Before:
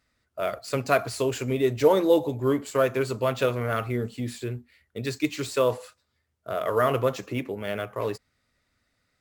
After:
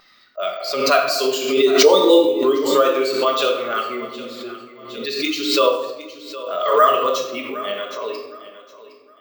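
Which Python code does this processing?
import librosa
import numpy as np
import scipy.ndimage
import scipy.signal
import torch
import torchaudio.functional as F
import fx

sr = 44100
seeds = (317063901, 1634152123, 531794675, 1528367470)

y = fx.bin_expand(x, sr, power=1.5)
y = scipy.signal.sosfilt(scipy.signal.butter(4, 310.0, 'highpass', fs=sr, output='sos'), y)
y = fx.wow_flutter(y, sr, seeds[0], rate_hz=2.1, depth_cents=17.0)
y = scipy.signal.sosfilt(scipy.signal.butter(2, 8700.0, 'lowpass', fs=sr, output='sos'), y)
y = fx.peak_eq(y, sr, hz=1200.0, db=8.5, octaves=0.26)
y = fx.env_lowpass(y, sr, base_hz=2500.0, full_db=-21.0)
y = fx.high_shelf_res(y, sr, hz=2700.0, db=9.0, q=1.5)
y = fx.echo_feedback(y, sr, ms=763, feedback_pct=27, wet_db=-16.0)
y = fx.room_shoebox(y, sr, seeds[1], volume_m3=380.0, walls='mixed', distance_m=1.3)
y = np.repeat(scipy.signal.resample_poly(y, 1, 2), 2)[:len(y)]
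y = fx.pre_swell(y, sr, db_per_s=57.0)
y = y * librosa.db_to_amplitude(5.5)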